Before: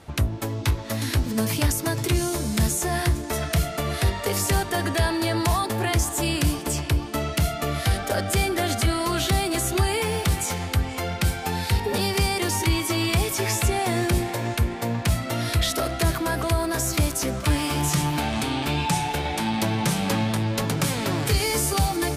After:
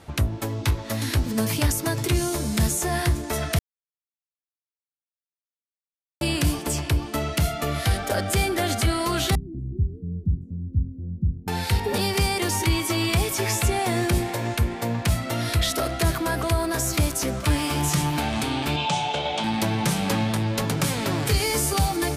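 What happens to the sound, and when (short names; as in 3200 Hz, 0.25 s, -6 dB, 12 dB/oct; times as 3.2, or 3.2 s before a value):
3.59–6.21 mute
9.35–11.48 inverse Chebyshev low-pass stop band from 850 Hz, stop band 60 dB
18.76–19.44 speaker cabinet 140–7000 Hz, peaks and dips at 180 Hz -4 dB, 310 Hz -9 dB, 610 Hz +8 dB, 1800 Hz -8 dB, 3200 Hz +8 dB, 5200 Hz -3 dB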